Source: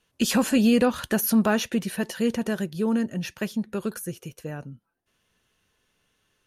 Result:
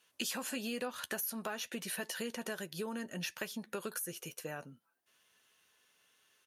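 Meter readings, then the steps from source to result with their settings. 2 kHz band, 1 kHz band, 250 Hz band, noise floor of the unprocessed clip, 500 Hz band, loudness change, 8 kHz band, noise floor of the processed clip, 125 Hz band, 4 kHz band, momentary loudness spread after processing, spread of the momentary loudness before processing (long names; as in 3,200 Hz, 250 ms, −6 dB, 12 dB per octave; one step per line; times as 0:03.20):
−9.5 dB, −13.0 dB, −20.5 dB, −74 dBFS, −14.5 dB, −15.0 dB, −8.0 dB, −77 dBFS, −17.5 dB, −8.5 dB, 6 LU, 16 LU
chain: high-pass filter 820 Hz 6 dB per octave
high-shelf EQ 12,000 Hz +6 dB
downward compressor 8 to 1, threshold −37 dBFS, peak gain reduction 16 dB
double-tracking delay 12 ms −13 dB
level +1 dB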